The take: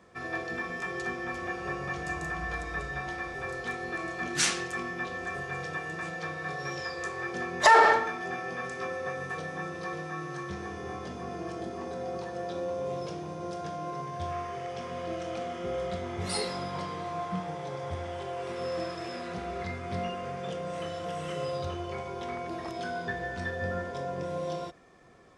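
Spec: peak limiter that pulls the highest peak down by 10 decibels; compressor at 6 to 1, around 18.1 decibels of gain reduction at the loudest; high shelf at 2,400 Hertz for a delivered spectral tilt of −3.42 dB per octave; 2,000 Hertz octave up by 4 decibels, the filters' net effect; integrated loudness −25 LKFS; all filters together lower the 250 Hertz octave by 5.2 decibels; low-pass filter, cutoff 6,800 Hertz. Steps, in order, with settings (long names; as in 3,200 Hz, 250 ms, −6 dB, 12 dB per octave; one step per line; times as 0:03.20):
low-pass filter 6,800 Hz
parametric band 250 Hz −9 dB
parametric band 2,000 Hz +8 dB
high-shelf EQ 2,400 Hz −8 dB
downward compressor 6 to 1, threshold −33 dBFS
level +13.5 dB
brickwall limiter −17 dBFS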